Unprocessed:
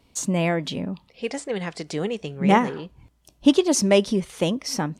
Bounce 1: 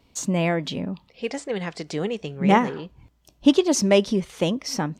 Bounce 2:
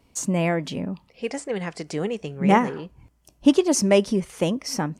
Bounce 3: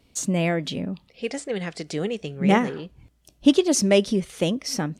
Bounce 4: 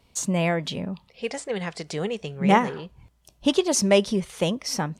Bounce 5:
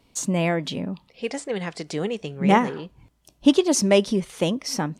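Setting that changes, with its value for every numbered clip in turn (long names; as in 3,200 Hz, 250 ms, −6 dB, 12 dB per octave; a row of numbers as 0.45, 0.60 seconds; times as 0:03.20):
parametric band, centre frequency: 9,900, 3,700, 960, 290, 71 Hertz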